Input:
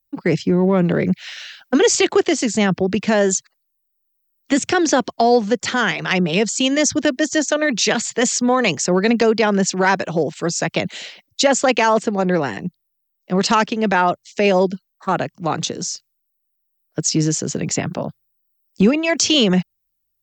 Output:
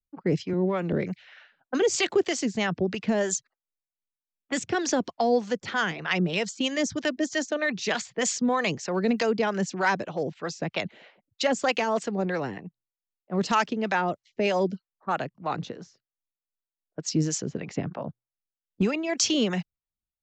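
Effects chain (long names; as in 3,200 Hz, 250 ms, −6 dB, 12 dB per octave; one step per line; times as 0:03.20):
0:00.53–0:00.93: high-pass filter 190 Hz
low-pass that shuts in the quiet parts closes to 620 Hz, open at −12.5 dBFS
two-band tremolo in antiphase 3.2 Hz, depth 70%, crossover 580 Hz
level −5.5 dB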